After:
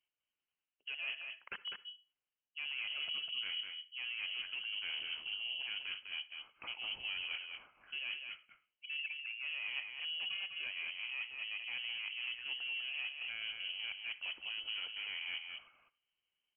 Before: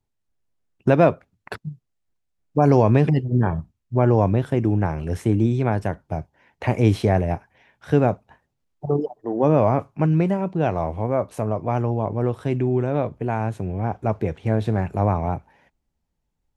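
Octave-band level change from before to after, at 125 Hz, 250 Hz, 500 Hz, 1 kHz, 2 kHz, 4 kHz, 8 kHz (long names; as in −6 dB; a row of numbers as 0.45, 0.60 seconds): below −40 dB, below −40 dB, below −40 dB, −33.0 dB, −3.0 dB, +10.0 dB, can't be measured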